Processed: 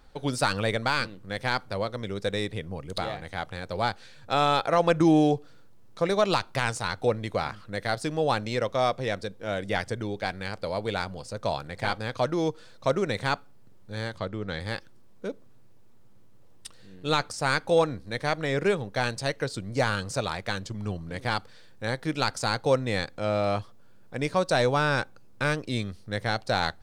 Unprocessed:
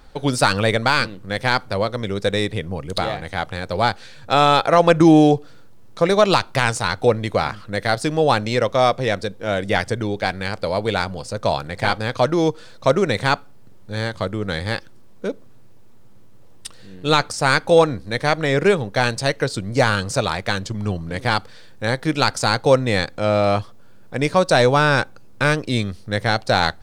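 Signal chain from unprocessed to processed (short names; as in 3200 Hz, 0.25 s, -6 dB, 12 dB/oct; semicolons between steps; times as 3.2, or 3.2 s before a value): 14.18–14.6 LPF 5600 Hz 12 dB/oct; gain -8.5 dB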